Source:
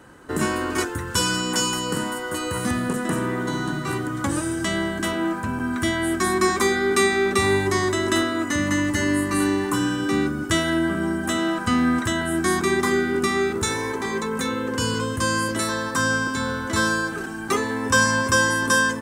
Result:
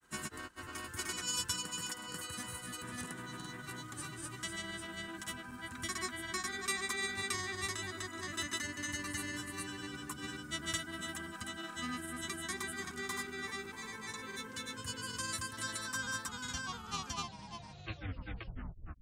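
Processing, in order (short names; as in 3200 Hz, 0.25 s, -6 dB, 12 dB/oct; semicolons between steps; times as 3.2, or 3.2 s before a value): tape stop at the end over 2.78 s; grains, spray 0.419 s, pitch spread up and down by 0 st; passive tone stack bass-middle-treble 5-5-5; gain -3 dB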